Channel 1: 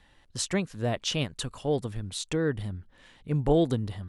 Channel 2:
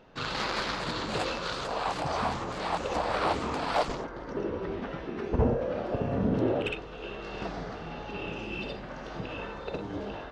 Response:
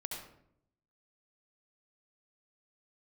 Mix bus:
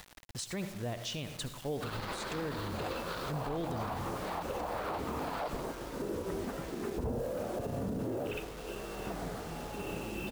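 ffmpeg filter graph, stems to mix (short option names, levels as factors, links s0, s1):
-filter_complex "[0:a]volume=0.398,asplit=2[s0][s1];[s1]volume=0.501[s2];[1:a]highshelf=f=2100:g=-8,adelay=1650,volume=0.794,asplit=2[s3][s4];[s4]volume=0.0841[s5];[2:a]atrim=start_sample=2205[s6];[s2][s5]amix=inputs=2:normalize=0[s7];[s7][s6]afir=irnorm=-1:irlink=0[s8];[s0][s3][s8]amix=inputs=3:normalize=0,acompressor=mode=upward:threshold=0.00708:ratio=2.5,acrusher=bits=7:mix=0:aa=0.000001,alimiter=level_in=1.58:limit=0.0631:level=0:latency=1:release=60,volume=0.631"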